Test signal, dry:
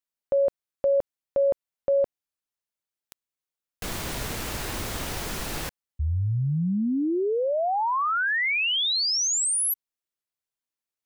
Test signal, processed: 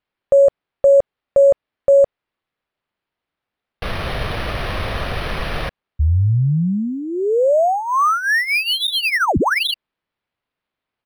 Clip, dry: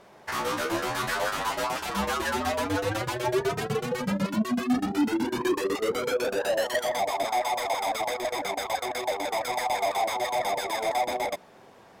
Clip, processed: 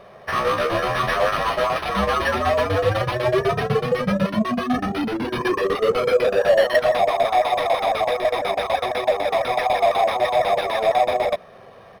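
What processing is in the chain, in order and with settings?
comb filter 1.7 ms, depth 63%
linearly interpolated sample-rate reduction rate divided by 6×
level +7 dB

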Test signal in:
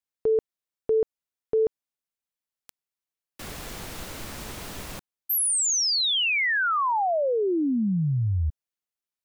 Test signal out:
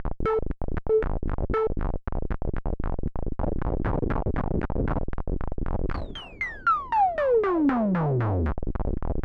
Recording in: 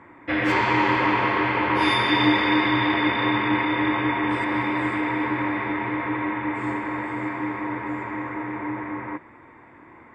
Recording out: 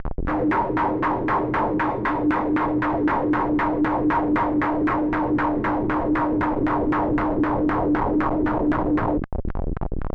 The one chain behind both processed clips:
low-pass filter 3,300 Hz 24 dB per octave
background noise brown −36 dBFS
brickwall limiter −16 dBFS
comparator with hysteresis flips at −35.5 dBFS
auto-filter low-pass saw down 3.9 Hz 280–1,700 Hz
level +3 dB

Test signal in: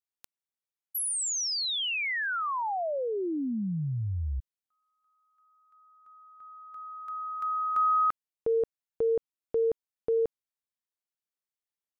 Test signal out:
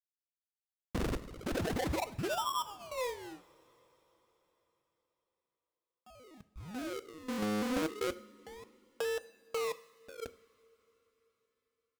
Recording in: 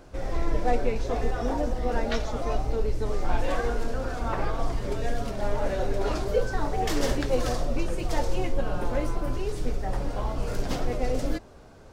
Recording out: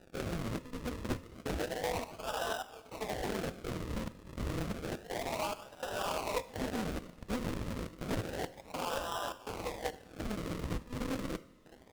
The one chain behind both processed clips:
high-pass filter 620 Hz 24 dB per octave
comb filter 6.1 ms, depth 41%
dynamic equaliser 1,100 Hz, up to −3 dB, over −52 dBFS, Q 5.7
downward compressor 5 to 1, threshold −38 dBFS
gate pattern "xxxx.xxx.." 103 BPM −12 dB
sample-and-hold swept by an LFO 40×, swing 100% 0.3 Hz
dead-zone distortion −57.5 dBFS
coupled-rooms reverb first 0.54 s, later 4.4 s, from −18 dB, DRR 12.5 dB
highs frequency-modulated by the lows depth 0.87 ms
level +6 dB

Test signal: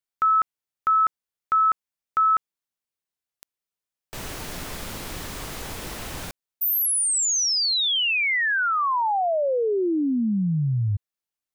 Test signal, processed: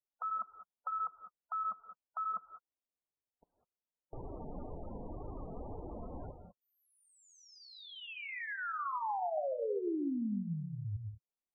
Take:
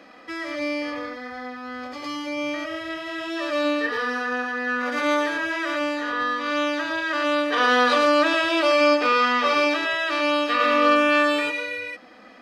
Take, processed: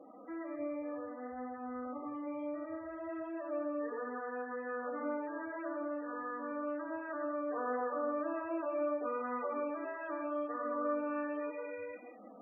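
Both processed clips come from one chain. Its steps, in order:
Chebyshev low-pass filter 830 Hz, order 2
downward compressor 2 to 1, threshold −39 dBFS
reverb whose tail is shaped and stops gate 220 ms rising, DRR 7 dB
flanger 1.9 Hz, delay 2.1 ms, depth 2.5 ms, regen −49%
spectral peaks only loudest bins 32

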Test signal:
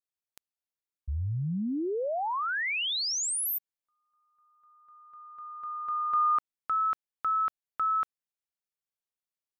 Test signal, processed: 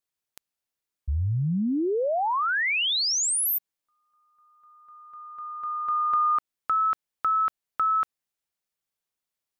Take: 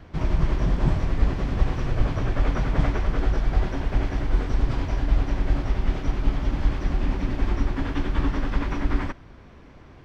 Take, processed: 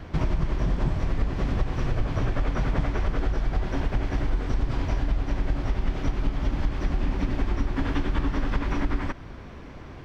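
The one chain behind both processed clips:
downward compressor 5 to 1, threshold −27 dBFS
level +6 dB

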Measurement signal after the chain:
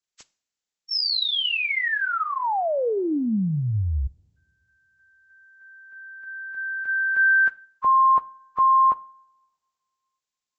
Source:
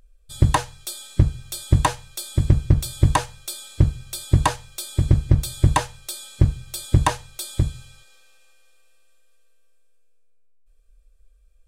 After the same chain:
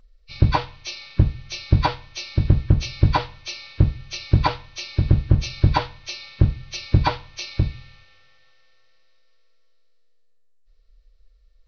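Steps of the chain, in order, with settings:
hearing-aid frequency compression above 1,000 Hz 1.5 to 1
coupled-rooms reverb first 0.42 s, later 2.4 s, from −26 dB, DRR 17 dB

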